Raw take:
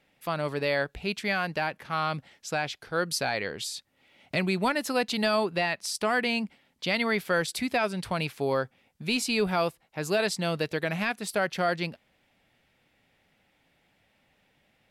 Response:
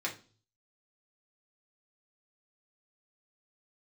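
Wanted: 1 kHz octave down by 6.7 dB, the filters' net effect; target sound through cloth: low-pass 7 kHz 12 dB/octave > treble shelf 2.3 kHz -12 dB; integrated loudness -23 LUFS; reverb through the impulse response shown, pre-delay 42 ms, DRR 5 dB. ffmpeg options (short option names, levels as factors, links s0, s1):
-filter_complex "[0:a]equalizer=f=1000:t=o:g=-7.5,asplit=2[s0][s1];[1:a]atrim=start_sample=2205,adelay=42[s2];[s1][s2]afir=irnorm=-1:irlink=0,volume=0.335[s3];[s0][s3]amix=inputs=2:normalize=0,lowpass=7000,highshelf=f=2300:g=-12,volume=2.66"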